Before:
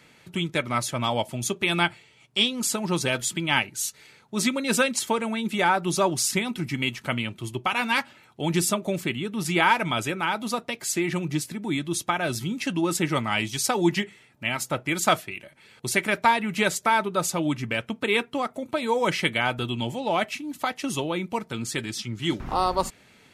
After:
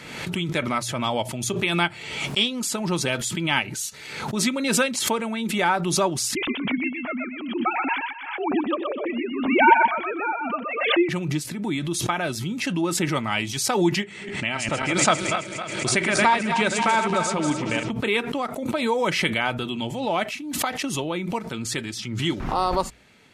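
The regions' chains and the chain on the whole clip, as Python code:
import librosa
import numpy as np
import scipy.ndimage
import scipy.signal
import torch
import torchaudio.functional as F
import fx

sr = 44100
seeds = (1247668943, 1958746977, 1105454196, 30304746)

y = fx.chain(x, sr, fx.sine_speech(),
    fx.echo_feedback(ms=124, feedback_pct=18, wet_db=-4.5), at=(6.35, 11.09))
y = fx.chain(y, sr, fx.reverse_delay_fb(ms=134, feedback_pct=66, wet_db=-6.5),
    fx.steep_lowpass(hz=9700.0, slope=72), at=(14.02, 17.91))
y = fx.high_shelf(y, sr, hz=12000.0, db=-7.5)
y = fx.hum_notches(y, sr, base_hz=60, count=2)
y = fx.pre_swell(y, sr, db_per_s=48.0)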